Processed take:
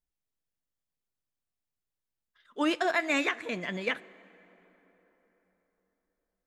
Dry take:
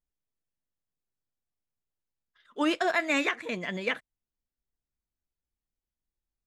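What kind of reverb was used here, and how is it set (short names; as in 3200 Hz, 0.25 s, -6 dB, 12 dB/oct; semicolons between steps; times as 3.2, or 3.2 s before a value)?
plate-style reverb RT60 4.2 s, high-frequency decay 0.55×, DRR 19.5 dB; gain -1 dB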